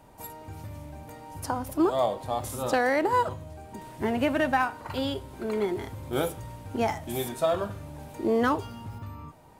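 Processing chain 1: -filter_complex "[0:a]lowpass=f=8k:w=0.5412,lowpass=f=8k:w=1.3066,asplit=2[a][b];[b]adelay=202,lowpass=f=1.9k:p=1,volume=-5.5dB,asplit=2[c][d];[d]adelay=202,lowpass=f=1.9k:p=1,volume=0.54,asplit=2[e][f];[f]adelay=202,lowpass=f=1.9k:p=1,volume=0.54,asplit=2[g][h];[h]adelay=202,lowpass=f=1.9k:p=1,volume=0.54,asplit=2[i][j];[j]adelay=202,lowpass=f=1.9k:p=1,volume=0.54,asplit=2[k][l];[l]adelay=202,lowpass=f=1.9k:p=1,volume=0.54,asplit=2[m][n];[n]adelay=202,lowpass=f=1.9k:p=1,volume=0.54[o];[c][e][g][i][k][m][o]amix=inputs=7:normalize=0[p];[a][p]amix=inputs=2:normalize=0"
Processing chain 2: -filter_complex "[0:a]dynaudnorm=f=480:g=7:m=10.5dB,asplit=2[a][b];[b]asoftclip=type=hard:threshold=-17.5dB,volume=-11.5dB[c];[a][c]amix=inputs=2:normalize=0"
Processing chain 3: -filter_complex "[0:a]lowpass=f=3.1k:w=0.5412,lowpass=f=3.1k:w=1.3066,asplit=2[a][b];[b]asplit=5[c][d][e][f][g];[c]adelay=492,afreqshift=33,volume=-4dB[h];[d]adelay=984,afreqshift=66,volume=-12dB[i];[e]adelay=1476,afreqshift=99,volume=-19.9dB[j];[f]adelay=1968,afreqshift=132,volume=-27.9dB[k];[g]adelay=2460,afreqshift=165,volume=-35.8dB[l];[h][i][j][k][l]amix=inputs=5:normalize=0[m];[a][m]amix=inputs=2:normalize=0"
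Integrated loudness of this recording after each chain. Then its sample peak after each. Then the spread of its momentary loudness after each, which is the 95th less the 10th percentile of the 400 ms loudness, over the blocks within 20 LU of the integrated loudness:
-27.5, -18.0, -27.5 LUFS; -11.0, -3.0, -10.5 dBFS; 17, 17, 17 LU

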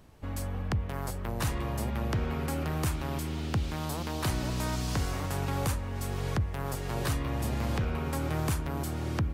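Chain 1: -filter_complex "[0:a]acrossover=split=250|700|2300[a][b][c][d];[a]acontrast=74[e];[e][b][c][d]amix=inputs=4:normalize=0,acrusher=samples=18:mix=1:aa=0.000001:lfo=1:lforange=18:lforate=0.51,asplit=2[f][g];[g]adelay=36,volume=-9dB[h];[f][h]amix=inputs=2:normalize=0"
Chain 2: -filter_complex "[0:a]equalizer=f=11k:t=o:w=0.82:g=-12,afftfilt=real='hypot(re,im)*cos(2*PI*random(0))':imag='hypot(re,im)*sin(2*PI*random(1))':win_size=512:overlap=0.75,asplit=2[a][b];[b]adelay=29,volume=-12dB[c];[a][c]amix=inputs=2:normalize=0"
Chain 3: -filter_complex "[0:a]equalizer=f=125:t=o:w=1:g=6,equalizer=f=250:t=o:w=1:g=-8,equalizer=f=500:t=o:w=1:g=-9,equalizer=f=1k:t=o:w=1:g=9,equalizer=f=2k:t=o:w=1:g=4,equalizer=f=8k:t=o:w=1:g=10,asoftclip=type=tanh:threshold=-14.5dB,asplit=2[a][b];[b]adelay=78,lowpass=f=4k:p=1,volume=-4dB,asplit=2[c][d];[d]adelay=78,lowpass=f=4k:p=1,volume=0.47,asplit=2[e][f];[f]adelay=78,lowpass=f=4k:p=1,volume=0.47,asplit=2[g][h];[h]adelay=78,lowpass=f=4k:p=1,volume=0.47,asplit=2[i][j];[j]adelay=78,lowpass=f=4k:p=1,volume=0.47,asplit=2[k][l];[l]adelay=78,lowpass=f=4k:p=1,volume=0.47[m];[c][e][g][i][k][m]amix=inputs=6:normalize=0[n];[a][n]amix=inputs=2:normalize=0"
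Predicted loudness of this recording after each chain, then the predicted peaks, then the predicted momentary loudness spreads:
-27.0, -39.0, -28.5 LUFS; -13.0, -22.0, -14.0 dBFS; 4, 4, 5 LU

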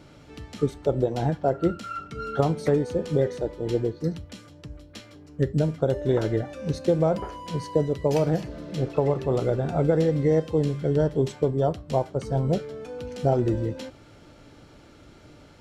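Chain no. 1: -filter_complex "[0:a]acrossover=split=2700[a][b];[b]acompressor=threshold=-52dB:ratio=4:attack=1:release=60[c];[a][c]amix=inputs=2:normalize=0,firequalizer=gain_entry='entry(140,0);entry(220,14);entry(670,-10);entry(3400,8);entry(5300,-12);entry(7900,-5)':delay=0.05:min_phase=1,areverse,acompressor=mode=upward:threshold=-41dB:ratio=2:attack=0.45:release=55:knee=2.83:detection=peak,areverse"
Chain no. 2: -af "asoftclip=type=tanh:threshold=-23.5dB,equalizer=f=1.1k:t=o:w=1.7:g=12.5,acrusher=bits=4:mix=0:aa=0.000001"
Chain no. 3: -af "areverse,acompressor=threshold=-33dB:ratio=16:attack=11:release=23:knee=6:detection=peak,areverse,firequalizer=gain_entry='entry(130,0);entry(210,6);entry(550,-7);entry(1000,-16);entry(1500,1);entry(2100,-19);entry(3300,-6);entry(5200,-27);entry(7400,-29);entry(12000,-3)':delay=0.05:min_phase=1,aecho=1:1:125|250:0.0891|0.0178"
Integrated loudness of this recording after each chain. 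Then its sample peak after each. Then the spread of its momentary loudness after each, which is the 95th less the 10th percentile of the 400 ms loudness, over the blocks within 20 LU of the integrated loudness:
-21.5, -25.5, -35.5 LUFS; -4.5, -11.5, -21.5 dBFS; 15, 7, 12 LU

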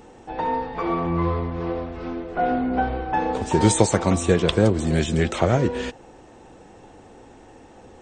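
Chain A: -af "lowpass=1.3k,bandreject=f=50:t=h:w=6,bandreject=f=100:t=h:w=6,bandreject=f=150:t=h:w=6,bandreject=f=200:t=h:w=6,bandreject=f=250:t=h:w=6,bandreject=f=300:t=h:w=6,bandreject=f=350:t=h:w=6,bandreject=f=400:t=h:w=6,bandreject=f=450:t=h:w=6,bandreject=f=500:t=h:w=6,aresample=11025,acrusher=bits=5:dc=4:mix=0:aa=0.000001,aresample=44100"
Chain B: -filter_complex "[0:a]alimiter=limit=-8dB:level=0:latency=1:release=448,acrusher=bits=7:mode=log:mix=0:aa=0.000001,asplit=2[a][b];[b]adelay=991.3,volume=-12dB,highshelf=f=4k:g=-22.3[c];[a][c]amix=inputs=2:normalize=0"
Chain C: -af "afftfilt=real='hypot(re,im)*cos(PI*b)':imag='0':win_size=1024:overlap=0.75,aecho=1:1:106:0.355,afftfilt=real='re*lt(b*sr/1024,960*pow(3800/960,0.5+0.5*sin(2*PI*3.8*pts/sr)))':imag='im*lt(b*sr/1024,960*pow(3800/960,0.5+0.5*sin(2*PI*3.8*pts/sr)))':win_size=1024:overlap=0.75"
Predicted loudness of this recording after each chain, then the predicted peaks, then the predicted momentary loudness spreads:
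-23.0, -24.0, -26.5 LUFS; -2.5, -7.5, -6.0 dBFS; 11, 13, 10 LU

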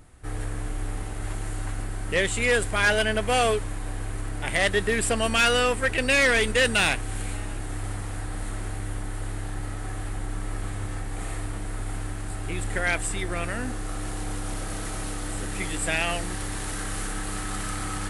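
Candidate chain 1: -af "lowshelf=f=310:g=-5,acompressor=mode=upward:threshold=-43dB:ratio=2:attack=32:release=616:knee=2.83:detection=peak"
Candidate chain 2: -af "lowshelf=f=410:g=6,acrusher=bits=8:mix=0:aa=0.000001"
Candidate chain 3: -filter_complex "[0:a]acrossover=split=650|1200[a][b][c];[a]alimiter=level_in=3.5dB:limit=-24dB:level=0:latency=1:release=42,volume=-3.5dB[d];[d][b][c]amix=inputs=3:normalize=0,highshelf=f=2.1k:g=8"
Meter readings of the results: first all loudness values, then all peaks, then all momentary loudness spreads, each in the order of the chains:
-27.5, -25.0, -23.0 LUFS; -13.5, -10.5, -4.5 dBFS; 16, 10, 17 LU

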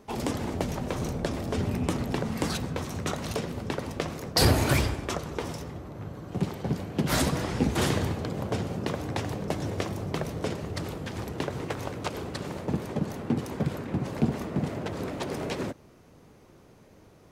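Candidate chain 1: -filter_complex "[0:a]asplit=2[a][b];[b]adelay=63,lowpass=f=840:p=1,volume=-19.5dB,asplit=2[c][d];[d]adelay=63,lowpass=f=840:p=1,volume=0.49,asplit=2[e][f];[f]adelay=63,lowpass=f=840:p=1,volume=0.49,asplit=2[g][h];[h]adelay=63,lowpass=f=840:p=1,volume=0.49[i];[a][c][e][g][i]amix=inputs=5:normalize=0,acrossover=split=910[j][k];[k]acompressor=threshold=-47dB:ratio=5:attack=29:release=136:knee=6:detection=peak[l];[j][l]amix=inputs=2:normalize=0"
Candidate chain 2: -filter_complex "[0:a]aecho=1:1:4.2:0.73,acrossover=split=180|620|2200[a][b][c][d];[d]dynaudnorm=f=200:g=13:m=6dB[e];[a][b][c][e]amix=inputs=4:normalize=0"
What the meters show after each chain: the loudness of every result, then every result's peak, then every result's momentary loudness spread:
-31.5, -27.5 LUFS; -9.0, -4.0 dBFS; 8, 10 LU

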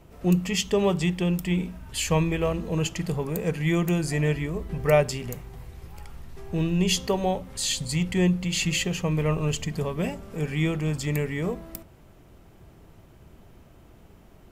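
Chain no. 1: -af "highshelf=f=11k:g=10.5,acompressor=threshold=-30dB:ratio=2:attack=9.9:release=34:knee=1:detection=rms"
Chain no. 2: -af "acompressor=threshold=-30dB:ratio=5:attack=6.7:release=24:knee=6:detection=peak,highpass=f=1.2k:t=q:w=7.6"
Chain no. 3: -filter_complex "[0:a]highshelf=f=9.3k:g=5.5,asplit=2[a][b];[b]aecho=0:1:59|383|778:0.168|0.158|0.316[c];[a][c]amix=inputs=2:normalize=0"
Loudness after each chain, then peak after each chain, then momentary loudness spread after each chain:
-30.0, -34.0, -25.5 LUFS; -12.5, -17.0, -7.5 dBFS; 9, 13, 10 LU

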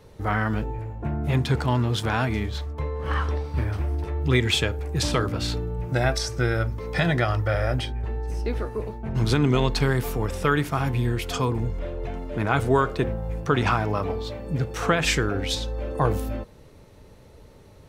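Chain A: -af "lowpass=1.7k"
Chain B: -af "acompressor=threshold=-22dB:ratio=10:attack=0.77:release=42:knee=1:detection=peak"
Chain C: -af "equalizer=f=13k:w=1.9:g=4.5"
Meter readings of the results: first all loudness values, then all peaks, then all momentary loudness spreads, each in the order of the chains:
-26.0, -29.0, -25.5 LUFS; -7.5, -16.0, -7.0 dBFS; 9, 4, 9 LU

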